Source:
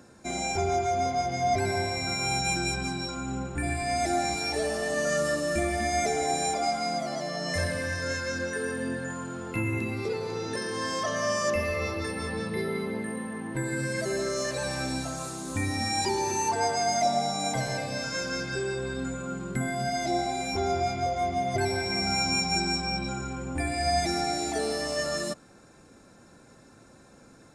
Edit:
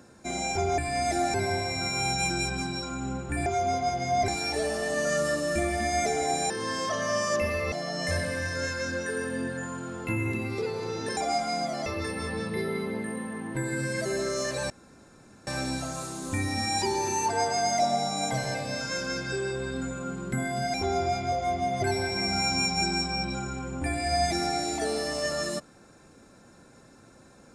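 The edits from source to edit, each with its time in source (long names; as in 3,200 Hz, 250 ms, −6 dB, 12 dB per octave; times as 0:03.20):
0:00.78–0:01.60: swap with 0:03.72–0:04.28
0:06.50–0:07.19: swap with 0:10.64–0:11.86
0:14.70: splice in room tone 0.77 s
0:19.97–0:20.48: remove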